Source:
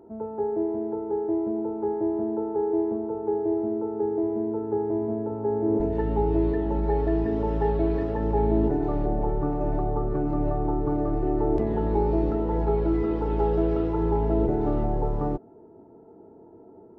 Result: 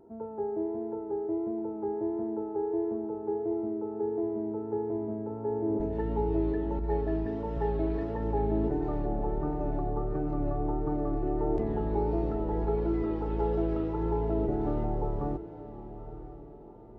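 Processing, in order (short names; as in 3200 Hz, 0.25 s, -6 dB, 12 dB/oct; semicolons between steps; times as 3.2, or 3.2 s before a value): diffused feedback echo 0.957 s, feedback 42%, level -13.5 dB; vibrato 1.5 Hz 30 cents; 6.79–7.57 three-band expander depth 100%; gain -5.5 dB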